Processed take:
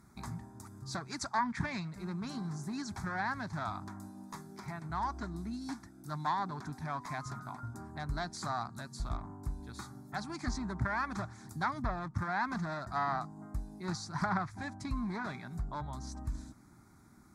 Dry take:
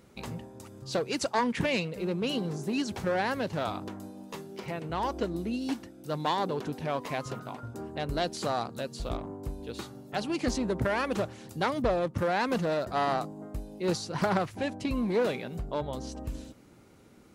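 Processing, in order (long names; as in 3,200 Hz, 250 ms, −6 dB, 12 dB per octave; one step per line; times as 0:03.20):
dynamic equaliser 350 Hz, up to −6 dB, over −42 dBFS, Q 0.71
treble cut that deepens with the level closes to 2,400 Hz, closed at −23 dBFS
phaser with its sweep stopped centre 1,200 Hz, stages 4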